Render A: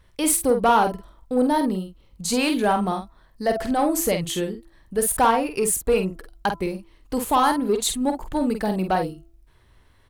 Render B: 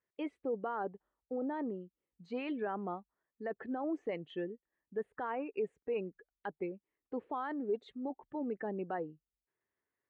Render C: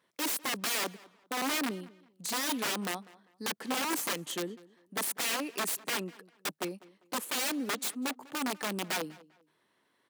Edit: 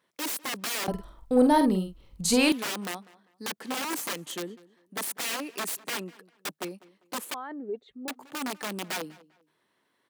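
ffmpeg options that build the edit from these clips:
ffmpeg -i take0.wav -i take1.wav -i take2.wav -filter_complex "[2:a]asplit=3[link_01][link_02][link_03];[link_01]atrim=end=0.882[link_04];[0:a]atrim=start=0.878:end=2.522[link_05];[link_02]atrim=start=2.518:end=7.342[link_06];[1:a]atrim=start=7.338:end=8.082[link_07];[link_03]atrim=start=8.078[link_08];[link_04][link_05]acrossfade=duration=0.004:curve1=hsin:curve2=hsin[link_09];[link_09][link_06]acrossfade=duration=0.004:curve1=hsin:curve2=hsin[link_10];[link_10][link_07]acrossfade=duration=0.004:curve1=hsin:curve2=hsin[link_11];[link_11][link_08]acrossfade=duration=0.004:curve1=hsin:curve2=hsin" out.wav

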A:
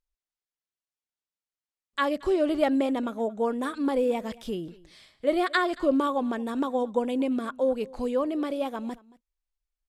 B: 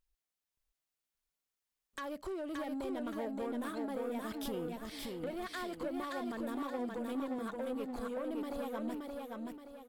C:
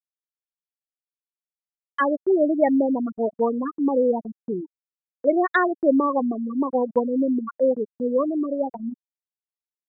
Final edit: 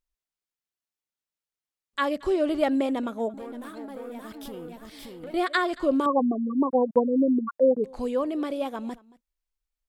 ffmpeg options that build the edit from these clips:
ffmpeg -i take0.wav -i take1.wav -i take2.wav -filter_complex "[0:a]asplit=3[link_01][link_02][link_03];[link_01]atrim=end=3.342[link_04];[1:a]atrim=start=3.338:end=5.342[link_05];[link_02]atrim=start=5.338:end=6.062[link_06];[2:a]atrim=start=6.058:end=7.842[link_07];[link_03]atrim=start=7.838[link_08];[link_04][link_05]acrossfade=duration=0.004:curve1=hsin:curve2=hsin[link_09];[link_09][link_06]acrossfade=duration=0.004:curve1=hsin:curve2=hsin[link_10];[link_10][link_07]acrossfade=duration=0.004:curve1=hsin:curve2=hsin[link_11];[link_11][link_08]acrossfade=duration=0.004:curve1=hsin:curve2=hsin" out.wav

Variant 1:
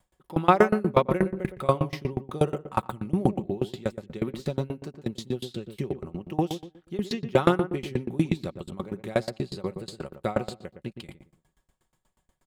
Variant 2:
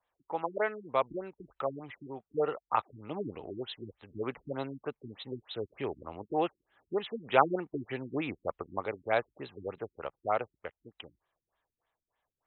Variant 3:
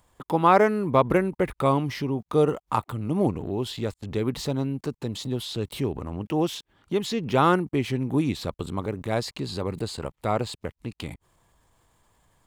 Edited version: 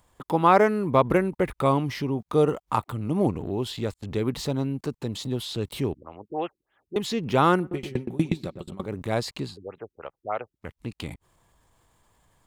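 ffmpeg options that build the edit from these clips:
ffmpeg -i take0.wav -i take1.wav -i take2.wav -filter_complex "[1:a]asplit=2[link_01][link_02];[2:a]asplit=4[link_03][link_04][link_05][link_06];[link_03]atrim=end=5.942[link_07];[link_01]atrim=start=5.938:end=6.962[link_08];[link_04]atrim=start=6.958:end=7.76[link_09];[0:a]atrim=start=7.6:end=8.96[link_10];[link_05]atrim=start=8.8:end=9.58[link_11];[link_02]atrim=start=9.42:end=10.73[link_12];[link_06]atrim=start=10.57[link_13];[link_07][link_08]acrossfade=duration=0.004:curve1=hsin:curve2=hsin[link_14];[link_14][link_09]acrossfade=duration=0.004:curve1=hsin:curve2=hsin[link_15];[link_15][link_10]acrossfade=duration=0.16:curve1=tri:curve2=tri[link_16];[link_16][link_11]acrossfade=duration=0.16:curve1=tri:curve2=tri[link_17];[link_17][link_12]acrossfade=duration=0.16:curve1=tri:curve2=tri[link_18];[link_18][link_13]acrossfade=duration=0.16:curve1=tri:curve2=tri" out.wav

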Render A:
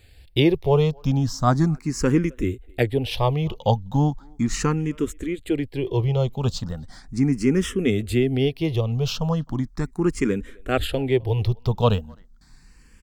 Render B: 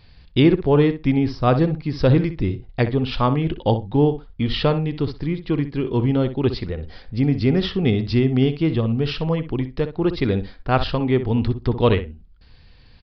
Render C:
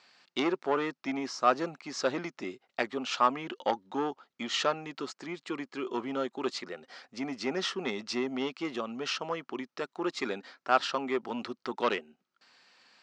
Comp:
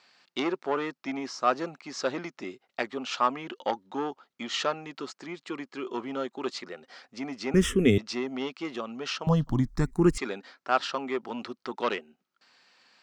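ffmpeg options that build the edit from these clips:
ffmpeg -i take0.wav -i take1.wav -i take2.wav -filter_complex "[0:a]asplit=2[link_01][link_02];[2:a]asplit=3[link_03][link_04][link_05];[link_03]atrim=end=7.542[link_06];[link_01]atrim=start=7.538:end=7.982[link_07];[link_04]atrim=start=7.978:end=9.272[link_08];[link_02]atrim=start=9.268:end=10.182[link_09];[link_05]atrim=start=10.178[link_10];[link_06][link_07]acrossfade=duration=0.004:curve1=hsin:curve2=hsin[link_11];[link_11][link_08]acrossfade=duration=0.004:curve1=hsin:curve2=hsin[link_12];[link_12][link_09]acrossfade=duration=0.004:curve1=hsin:curve2=hsin[link_13];[link_13][link_10]acrossfade=duration=0.004:curve1=hsin:curve2=hsin" out.wav

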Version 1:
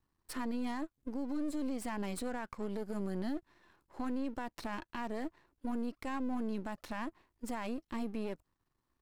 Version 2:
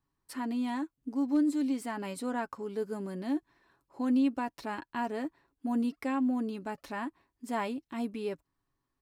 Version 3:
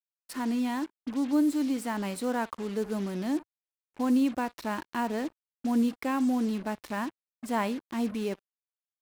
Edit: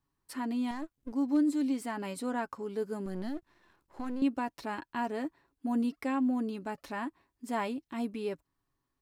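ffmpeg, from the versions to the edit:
ffmpeg -i take0.wav -i take1.wav -filter_complex "[0:a]asplit=2[link_01][link_02];[1:a]asplit=3[link_03][link_04][link_05];[link_03]atrim=end=0.712[link_06];[link_01]atrim=start=0.708:end=1.122[link_07];[link_04]atrim=start=1.118:end=3.062[link_08];[link_02]atrim=start=3.058:end=4.222[link_09];[link_05]atrim=start=4.218[link_10];[link_06][link_07]acrossfade=duration=0.004:curve1=hsin:curve2=hsin[link_11];[link_11][link_08]acrossfade=duration=0.004:curve1=hsin:curve2=hsin[link_12];[link_12][link_09]acrossfade=duration=0.004:curve1=hsin:curve2=hsin[link_13];[link_13][link_10]acrossfade=duration=0.004:curve1=hsin:curve2=hsin" out.wav

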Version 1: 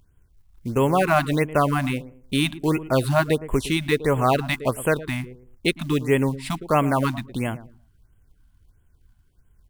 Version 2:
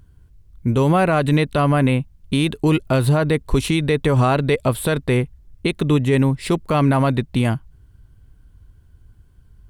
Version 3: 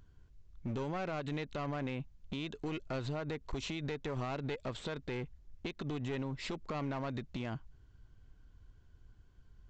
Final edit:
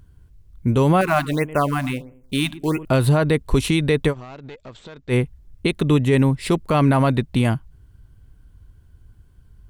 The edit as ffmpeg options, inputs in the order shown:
ffmpeg -i take0.wav -i take1.wav -i take2.wav -filter_complex "[1:a]asplit=3[link_01][link_02][link_03];[link_01]atrim=end=1.012[link_04];[0:a]atrim=start=1.008:end=2.852[link_05];[link_02]atrim=start=2.848:end=4.14[link_06];[2:a]atrim=start=4.08:end=5.14[link_07];[link_03]atrim=start=5.08[link_08];[link_04][link_05]acrossfade=duration=0.004:curve1=hsin:curve2=hsin[link_09];[link_09][link_06]acrossfade=duration=0.004:curve1=hsin:curve2=hsin[link_10];[link_10][link_07]acrossfade=duration=0.06:curve1=tri:curve2=tri[link_11];[link_11][link_08]acrossfade=duration=0.06:curve1=tri:curve2=tri" out.wav

